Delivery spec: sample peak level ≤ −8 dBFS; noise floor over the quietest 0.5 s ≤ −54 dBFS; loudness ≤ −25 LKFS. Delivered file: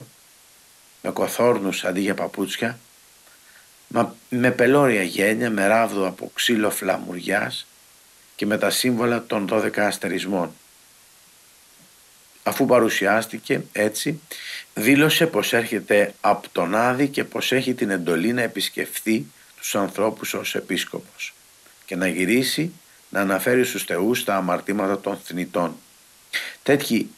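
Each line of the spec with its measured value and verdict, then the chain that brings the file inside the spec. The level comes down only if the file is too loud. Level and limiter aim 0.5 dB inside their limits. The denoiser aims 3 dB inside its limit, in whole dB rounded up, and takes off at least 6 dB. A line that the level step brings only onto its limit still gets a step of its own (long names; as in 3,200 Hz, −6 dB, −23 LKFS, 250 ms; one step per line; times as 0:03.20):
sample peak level −5.0 dBFS: out of spec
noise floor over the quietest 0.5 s −52 dBFS: out of spec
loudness −22.0 LKFS: out of spec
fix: level −3.5 dB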